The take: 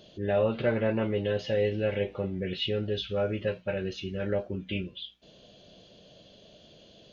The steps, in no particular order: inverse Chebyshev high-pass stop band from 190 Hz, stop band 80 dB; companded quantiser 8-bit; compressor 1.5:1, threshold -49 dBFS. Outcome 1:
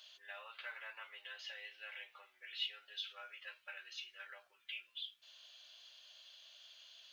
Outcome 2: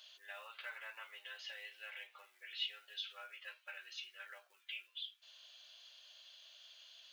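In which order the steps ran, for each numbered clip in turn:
compressor > inverse Chebyshev high-pass > companded quantiser; compressor > companded quantiser > inverse Chebyshev high-pass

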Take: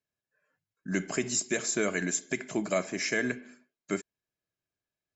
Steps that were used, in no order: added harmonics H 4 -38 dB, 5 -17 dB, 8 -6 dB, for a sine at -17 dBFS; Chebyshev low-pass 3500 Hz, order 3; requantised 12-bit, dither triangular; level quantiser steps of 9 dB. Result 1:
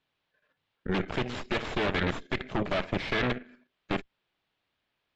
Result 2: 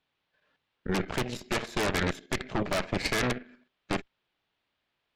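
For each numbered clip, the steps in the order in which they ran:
added harmonics > requantised > Chebyshev low-pass > level quantiser; requantised > Chebyshev low-pass > added harmonics > level quantiser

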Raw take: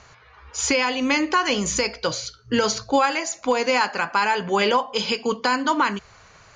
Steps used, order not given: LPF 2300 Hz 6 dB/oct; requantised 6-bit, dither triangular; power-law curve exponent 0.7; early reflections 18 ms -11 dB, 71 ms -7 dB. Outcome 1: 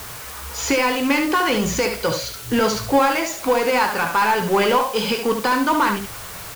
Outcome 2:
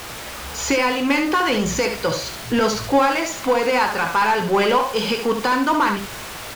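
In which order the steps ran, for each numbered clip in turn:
LPF > power-law curve > early reflections > requantised; requantised > LPF > power-law curve > early reflections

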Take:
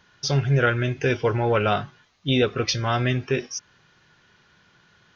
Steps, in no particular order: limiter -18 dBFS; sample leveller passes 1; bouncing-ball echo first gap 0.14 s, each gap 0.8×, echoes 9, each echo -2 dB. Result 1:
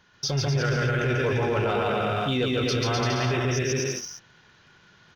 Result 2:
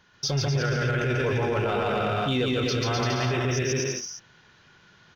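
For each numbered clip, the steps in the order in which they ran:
bouncing-ball echo > sample leveller > limiter; sample leveller > bouncing-ball echo > limiter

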